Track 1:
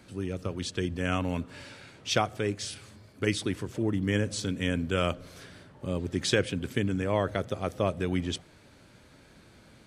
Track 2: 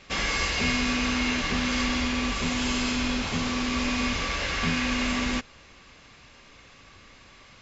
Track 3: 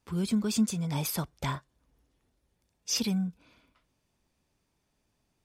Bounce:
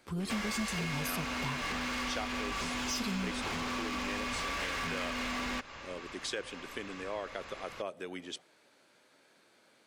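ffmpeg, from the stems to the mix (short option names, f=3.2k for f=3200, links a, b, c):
-filter_complex "[0:a]highpass=400,volume=-6dB[a];[1:a]acompressor=threshold=-30dB:ratio=6,equalizer=f=1.1k:w=0.48:g=8.5,asoftclip=type=hard:threshold=-29.5dB,adelay=200,volume=-0.5dB[b];[2:a]asoftclip=type=tanh:threshold=-24dB,volume=0dB[c];[a][b][c]amix=inputs=3:normalize=0,acompressor=threshold=-36dB:ratio=2"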